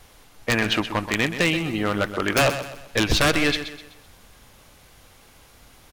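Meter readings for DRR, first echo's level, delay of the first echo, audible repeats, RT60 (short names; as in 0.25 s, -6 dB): none, -11.0 dB, 0.127 s, 3, none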